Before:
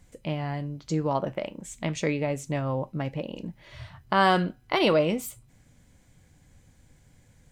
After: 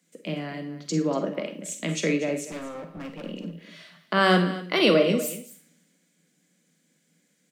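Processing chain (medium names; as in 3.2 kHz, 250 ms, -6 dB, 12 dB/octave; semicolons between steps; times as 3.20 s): steep high-pass 160 Hz 96 dB/octave; peaking EQ 880 Hz -13.5 dB 0.52 oct; in parallel at +2 dB: compression, threshold -39 dBFS, peak gain reduction 18 dB; 2.47–3.24 s: on the sum: overload inside the chain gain 32.5 dB; delay 241 ms -13 dB; on a send at -7 dB: reverberation RT60 0.40 s, pre-delay 37 ms; on the sum: three bands expanded up and down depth 40%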